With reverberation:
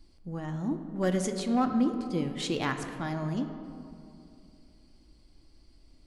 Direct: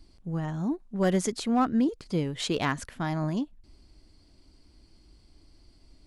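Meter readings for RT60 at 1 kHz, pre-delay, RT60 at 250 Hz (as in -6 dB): 2.4 s, 4 ms, 3.0 s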